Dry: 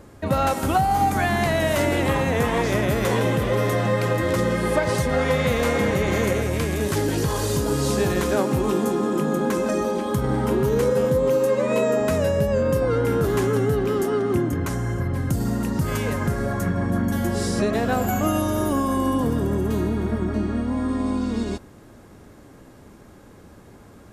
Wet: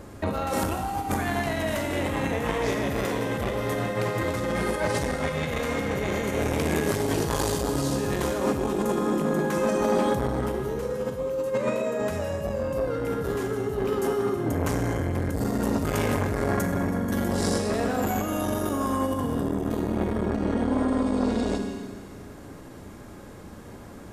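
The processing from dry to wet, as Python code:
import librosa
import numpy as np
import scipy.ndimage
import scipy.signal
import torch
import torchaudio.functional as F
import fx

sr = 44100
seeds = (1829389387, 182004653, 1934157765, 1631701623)

y = fx.over_compress(x, sr, threshold_db=-24.0, ratio=-0.5)
y = fx.rev_schroeder(y, sr, rt60_s=1.6, comb_ms=32, drr_db=5.0)
y = fx.transformer_sat(y, sr, knee_hz=640.0)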